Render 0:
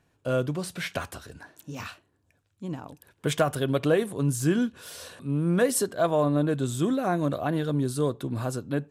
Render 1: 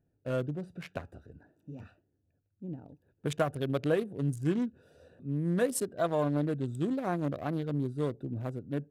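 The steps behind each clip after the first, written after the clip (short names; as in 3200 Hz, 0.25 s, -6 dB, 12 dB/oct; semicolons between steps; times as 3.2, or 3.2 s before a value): Wiener smoothing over 41 samples; gain -5 dB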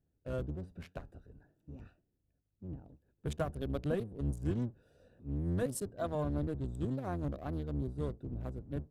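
octaver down 1 oct, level +1 dB; dynamic EQ 2200 Hz, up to -4 dB, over -53 dBFS, Q 1.4; gain -7 dB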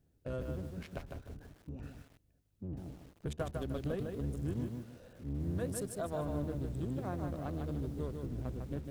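compressor 2:1, threshold -50 dBFS, peak gain reduction 11.5 dB; lo-fi delay 0.152 s, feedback 35%, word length 11-bit, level -4.5 dB; gain +7 dB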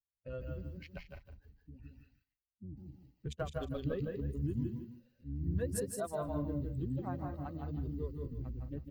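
per-bin expansion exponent 2; loudspeakers at several distances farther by 57 m -4 dB, 70 m -12 dB; gain +3 dB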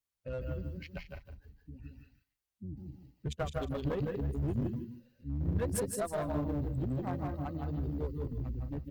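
one-sided clip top -37 dBFS; gain +4.5 dB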